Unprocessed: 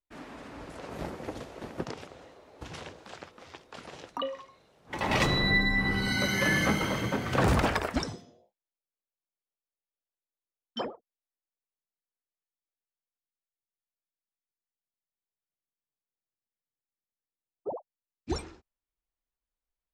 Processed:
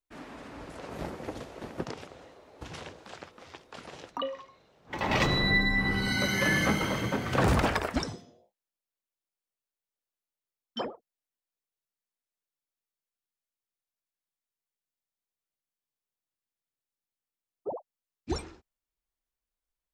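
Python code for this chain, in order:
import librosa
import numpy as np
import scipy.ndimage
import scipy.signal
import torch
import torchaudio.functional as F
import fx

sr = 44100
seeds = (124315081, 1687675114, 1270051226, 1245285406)

y = fx.peak_eq(x, sr, hz=10000.0, db=-9.0, octaves=0.66, at=(4.1, 5.31))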